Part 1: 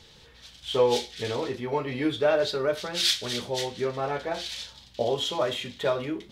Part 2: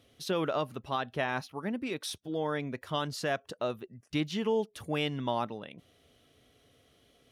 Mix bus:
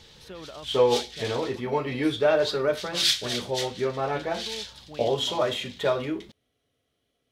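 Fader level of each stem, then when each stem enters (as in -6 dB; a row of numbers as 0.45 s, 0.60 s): +1.5 dB, -11.5 dB; 0.00 s, 0.00 s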